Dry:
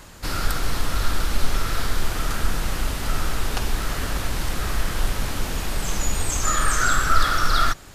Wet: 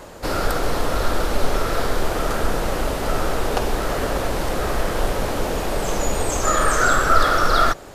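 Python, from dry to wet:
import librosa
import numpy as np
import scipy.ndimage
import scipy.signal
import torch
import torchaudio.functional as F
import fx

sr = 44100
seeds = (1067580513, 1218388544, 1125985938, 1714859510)

y = fx.peak_eq(x, sr, hz=530.0, db=14.5, octaves=1.9)
y = y * 10.0 ** (-1.0 / 20.0)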